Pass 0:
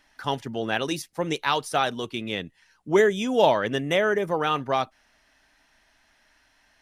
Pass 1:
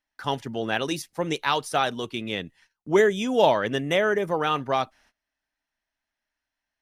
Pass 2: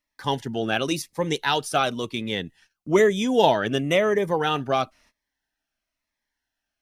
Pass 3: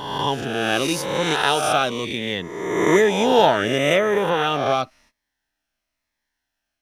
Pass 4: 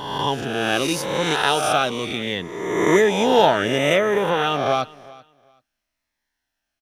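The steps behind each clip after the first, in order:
noise gate −56 dBFS, range −23 dB
phaser whose notches keep moving one way falling 1 Hz; level +3.5 dB
peak hold with a rise ahead of every peak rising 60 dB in 1.30 s
repeating echo 384 ms, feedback 20%, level −22 dB

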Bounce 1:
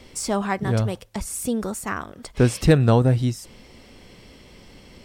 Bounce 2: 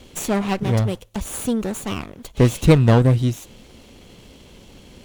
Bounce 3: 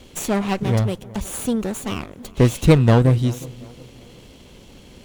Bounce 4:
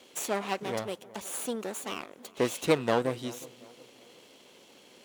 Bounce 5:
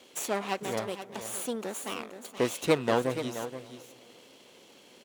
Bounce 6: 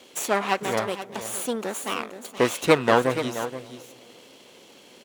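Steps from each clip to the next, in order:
lower of the sound and its delayed copy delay 0.3 ms; level +2.5 dB
tape delay 366 ms, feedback 48%, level −18 dB, low-pass 1,200 Hz
high-pass filter 390 Hz 12 dB per octave; level −6 dB
single-tap delay 476 ms −11 dB
dynamic equaliser 1,400 Hz, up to +6 dB, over −42 dBFS, Q 0.78; level +5 dB

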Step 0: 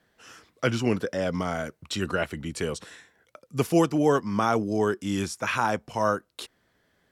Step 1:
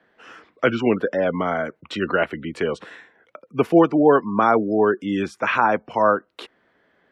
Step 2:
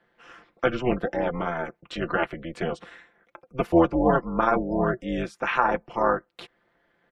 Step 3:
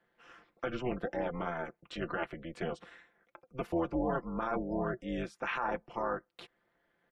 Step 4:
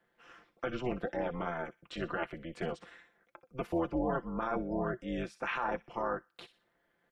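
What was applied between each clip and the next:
gate on every frequency bin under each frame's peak −30 dB strong; three-way crossover with the lows and the highs turned down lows −14 dB, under 200 Hz, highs −20 dB, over 3,100 Hz; level +7.5 dB
amplitude modulation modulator 250 Hz, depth 85%; comb filter 5.8 ms, depth 47%; level −2 dB
brickwall limiter −14.5 dBFS, peak gain reduction 9 dB; level −8 dB
delay with a high-pass on its return 61 ms, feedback 36%, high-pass 3,200 Hz, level −10.5 dB

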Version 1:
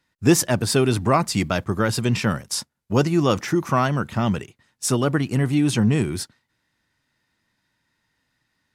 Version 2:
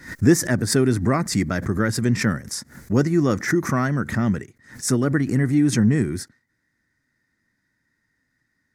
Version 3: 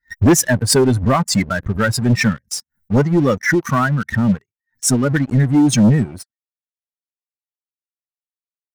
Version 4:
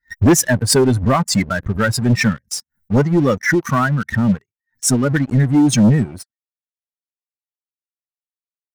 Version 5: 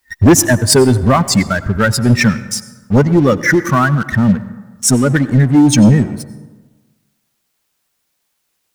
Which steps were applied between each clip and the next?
drawn EQ curve 170 Hz 0 dB, 260 Hz +3 dB, 940 Hz −9 dB, 1,900 Hz +4 dB, 2,800 Hz −16 dB, 5,900 Hz −2 dB, 9,600 Hz −4 dB; background raised ahead of every attack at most 130 dB per second
spectral dynamics exaggerated over time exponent 2; leveller curve on the samples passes 3; level +1 dB
no processing that can be heard
bit-depth reduction 12 bits, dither triangular; on a send at −15.5 dB: convolution reverb RT60 1.3 s, pre-delay 78 ms; on the sum: level +4 dB

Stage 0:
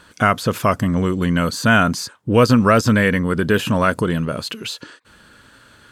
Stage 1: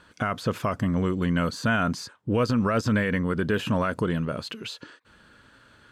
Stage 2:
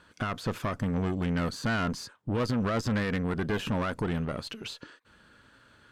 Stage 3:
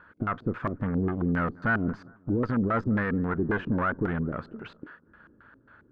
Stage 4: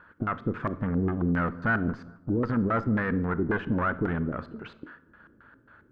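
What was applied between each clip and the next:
brickwall limiter −8.5 dBFS, peak gain reduction 6.5 dB; high-shelf EQ 7,000 Hz −11.5 dB; level −6 dB
tube saturation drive 23 dB, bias 0.65
auto-filter low-pass square 3.7 Hz 340–1,500 Hz; bucket-brigade delay 202 ms, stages 2,048, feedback 46%, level −23.5 dB
convolution reverb RT60 0.70 s, pre-delay 30 ms, DRR 15.5 dB

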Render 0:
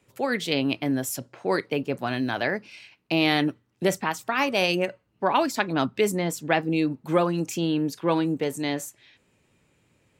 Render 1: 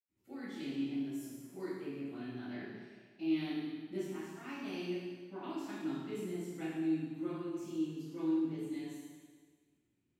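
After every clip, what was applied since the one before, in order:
low shelf with overshoot 430 Hz +6.5 dB, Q 3
convolution reverb RT60 1.5 s, pre-delay 77 ms
level −4.5 dB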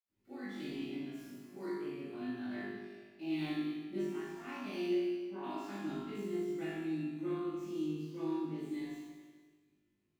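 running median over 5 samples
on a send: flutter between parallel walls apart 3.4 metres, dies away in 0.47 s
on the sum: level −2 dB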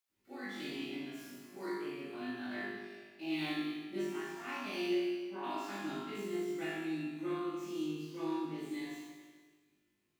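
low-shelf EQ 410 Hz −11 dB
level +6 dB

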